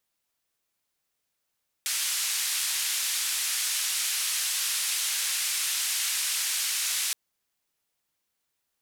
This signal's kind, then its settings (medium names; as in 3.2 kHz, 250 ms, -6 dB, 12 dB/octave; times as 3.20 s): noise band 2–11 kHz, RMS -28.5 dBFS 5.27 s